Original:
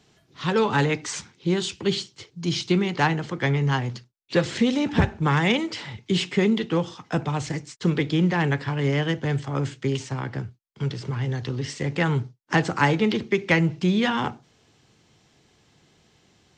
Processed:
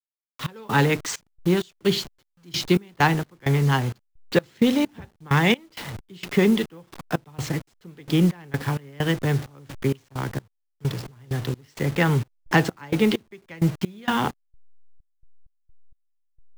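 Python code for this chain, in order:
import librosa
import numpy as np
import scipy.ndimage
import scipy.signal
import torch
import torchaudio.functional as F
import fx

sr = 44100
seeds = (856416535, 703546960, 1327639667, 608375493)

y = fx.delta_hold(x, sr, step_db=-34.5)
y = fx.step_gate(y, sr, bpm=65, pattern='.x.xx.x.x..x', floor_db=-24.0, edge_ms=4.5)
y = y * librosa.db_to_amplitude(2.5)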